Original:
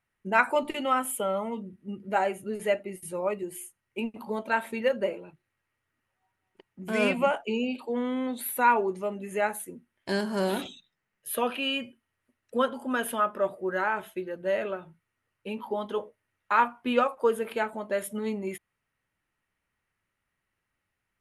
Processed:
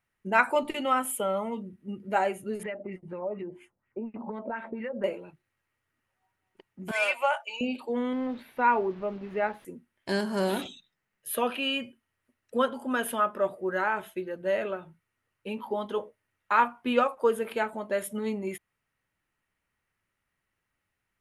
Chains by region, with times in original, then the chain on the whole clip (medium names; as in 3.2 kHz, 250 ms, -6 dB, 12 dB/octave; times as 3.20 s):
2.63–5.04 s: peaking EQ 230 Hz +5 dB 0.95 oct + compression 8:1, threshold -33 dBFS + LFO low-pass sine 4.2 Hz 560–2400 Hz
6.91–7.61 s: high-pass 680 Hz 24 dB/octave + comb 3.4 ms, depth 54%
8.13–9.65 s: send-on-delta sampling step -42 dBFS + distance through air 320 m
whole clip: none